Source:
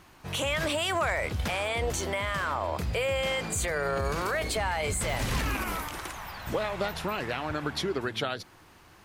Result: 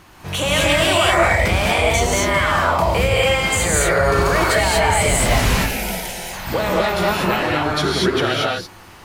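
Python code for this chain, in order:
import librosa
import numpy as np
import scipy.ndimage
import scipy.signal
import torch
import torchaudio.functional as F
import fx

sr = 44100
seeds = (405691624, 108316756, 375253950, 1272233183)

y = fx.fixed_phaser(x, sr, hz=310.0, stages=6, at=(5.46, 6.33))
y = fx.rev_gated(y, sr, seeds[0], gate_ms=260, shape='rising', drr_db=-4.5)
y = y * librosa.db_to_amplitude(7.5)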